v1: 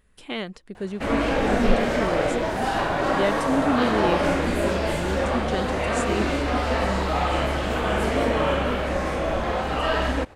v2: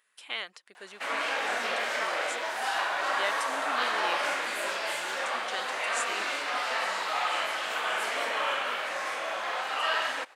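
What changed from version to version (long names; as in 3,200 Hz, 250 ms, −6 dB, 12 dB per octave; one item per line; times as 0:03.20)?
master: add high-pass filter 1,100 Hz 12 dB per octave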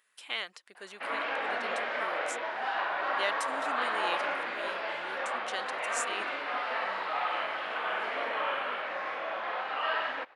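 background: add high-frequency loss of the air 350 metres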